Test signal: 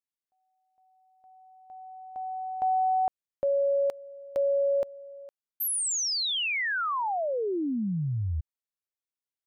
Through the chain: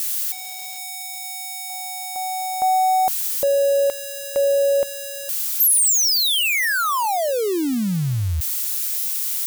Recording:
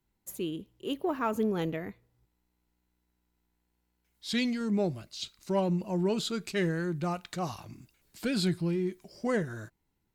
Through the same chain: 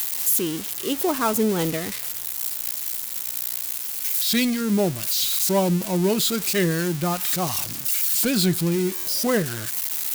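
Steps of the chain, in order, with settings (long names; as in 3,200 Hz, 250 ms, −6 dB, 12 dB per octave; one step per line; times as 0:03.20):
spike at every zero crossing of −24 dBFS
buffer that repeats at 0:08.96, samples 512, times 8
level +7.5 dB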